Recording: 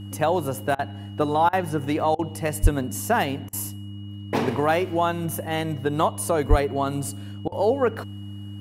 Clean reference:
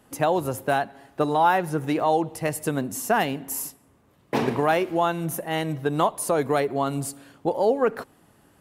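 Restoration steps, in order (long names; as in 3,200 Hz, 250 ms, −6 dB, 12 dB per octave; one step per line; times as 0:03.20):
hum removal 100.9 Hz, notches 3
notch filter 2,900 Hz, Q 30
0:02.62–0:02.74: high-pass filter 140 Hz 24 dB per octave
0:06.49–0:06.61: high-pass filter 140 Hz 24 dB per octave
repair the gap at 0:00.75/0:01.49/0:02.15/0:03.49/0:07.48, 39 ms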